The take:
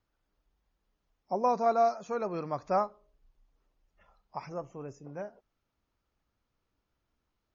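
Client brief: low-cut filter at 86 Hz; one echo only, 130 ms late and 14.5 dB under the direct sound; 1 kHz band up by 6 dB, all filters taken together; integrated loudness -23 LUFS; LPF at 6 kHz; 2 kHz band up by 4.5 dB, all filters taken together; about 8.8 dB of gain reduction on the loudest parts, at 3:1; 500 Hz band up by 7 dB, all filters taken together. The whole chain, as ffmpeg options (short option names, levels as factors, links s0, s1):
-af "highpass=86,lowpass=6000,equalizer=f=500:t=o:g=7.5,equalizer=f=1000:t=o:g=4,equalizer=f=2000:t=o:g=4,acompressor=threshold=0.0447:ratio=3,aecho=1:1:130:0.188,volume=2.82"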